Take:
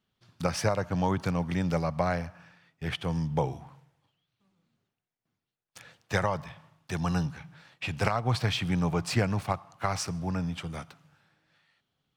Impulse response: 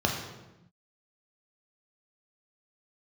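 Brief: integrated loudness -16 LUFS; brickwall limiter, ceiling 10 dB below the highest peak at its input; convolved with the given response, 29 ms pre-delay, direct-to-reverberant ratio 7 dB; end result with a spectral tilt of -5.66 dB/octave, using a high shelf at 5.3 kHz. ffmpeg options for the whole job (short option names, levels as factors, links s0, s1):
-filter_complex "[0:a]highshelf=f=5300:g=6,alimiter=limit=0.126:level=0:latency=1,asplit=2[s0][s1];[1:a]atrim=start_sample=2205,adelay=29[s2];[s1][s2]afir=irnorm=-1:irlink=0,volume=0.119[s3];[s0][s3]amix=inputs=2:normalize=0,volume=4.22"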